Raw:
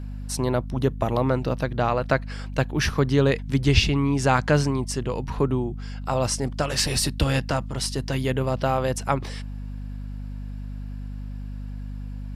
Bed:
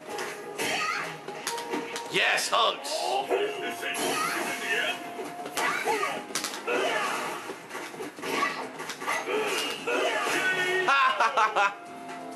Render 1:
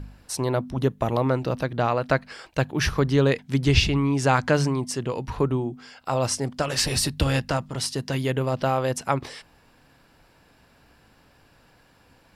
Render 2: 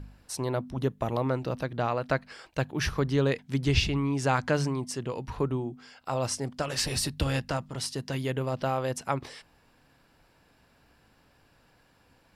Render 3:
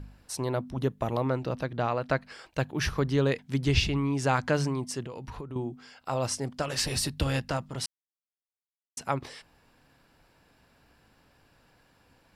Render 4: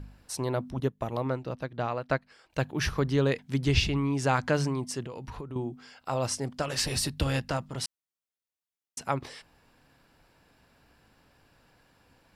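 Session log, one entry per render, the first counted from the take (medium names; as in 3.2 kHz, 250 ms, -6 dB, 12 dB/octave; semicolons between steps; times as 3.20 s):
de-hum 50 Hz, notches 5
trim -5.5 dB
1.24–2.21 s: treble shelf 11 kHz -8.5 dB; 5.04–5.56 s: compression 8:1, threshold -35 dBFS; 7.86–8.97 s: mute
0.80–2.50 s: upward expansion, over -44 dBFS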